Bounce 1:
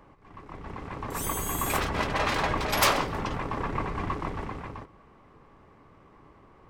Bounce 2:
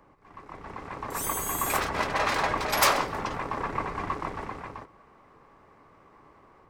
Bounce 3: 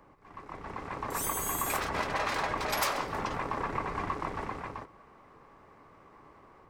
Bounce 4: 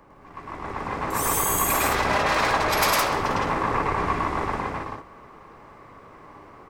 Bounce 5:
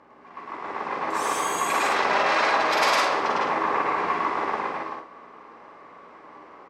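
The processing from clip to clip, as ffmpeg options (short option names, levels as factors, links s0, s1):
-filter_complex "[0:a]equalizer=f=3100:t=o:w=0.63:g=-4,acrossover=split=460[s0][s1];[s1]dynaudnorm=f=150:g=3:m=1.68[s2];[s0][s2]amix=inputs=2:normalize=0,lowshelf=f=160:g=-5,volume=0.75"
-af "acompressor=threshold=0.0355:ratio=3"
-af "aecho=1:1:105|163.3:1|0.794,volume=1.88"
-filter_complex "[0:a]aeval=exprs='val(0)+0.00398*(sin(2*PI*60*n/s)+sin(2*PI*2*60*n/s)/2+sin(2*PI*3*60*n/s)/3+sin(2*PI*4*60*n/s)/4+sin(2*PI*5*60*n/s)/5)':c=same,highpass=340,lowpass=5300,asplit=2[s0][s1];[s1]adelay=46,volume=0.531[s2];[s0][s2]amix=inputs=2:normalize=0"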